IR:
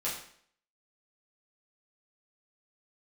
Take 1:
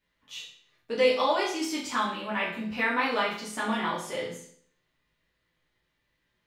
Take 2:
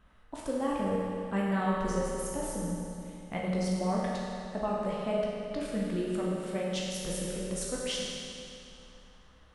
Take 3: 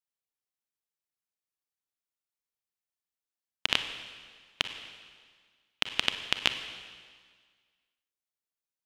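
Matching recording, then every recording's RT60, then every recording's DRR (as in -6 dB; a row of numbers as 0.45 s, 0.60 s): 1; 0.60 s, 2.7 s, 1.7 s; -8.0 dB, -5.0 dB, 8.0 dB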